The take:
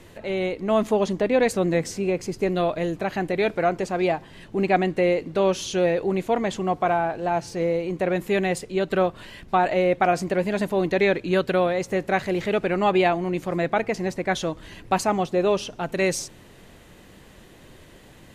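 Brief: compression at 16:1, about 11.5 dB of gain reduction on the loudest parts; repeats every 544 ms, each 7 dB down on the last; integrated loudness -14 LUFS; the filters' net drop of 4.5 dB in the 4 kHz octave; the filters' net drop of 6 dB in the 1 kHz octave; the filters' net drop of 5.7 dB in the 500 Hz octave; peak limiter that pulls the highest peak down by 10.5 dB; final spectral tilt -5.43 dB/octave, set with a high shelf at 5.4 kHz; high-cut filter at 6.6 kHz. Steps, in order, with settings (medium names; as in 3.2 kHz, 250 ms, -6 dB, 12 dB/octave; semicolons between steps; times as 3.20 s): low-pass 6.6 kHz; peaking EQ 500 Hz -6 dB; peaking EQ 1 kHz -5.5 dB; peaking EQ 4 kHz -3 dB; treble shelf 5.4 kHz -5 dB; compression 16:1, threshold -31 dBFS; peak limiter -30.5 dBFS; feedback delay 544 ms, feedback 45%, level -7 dB; trim +25.5 dB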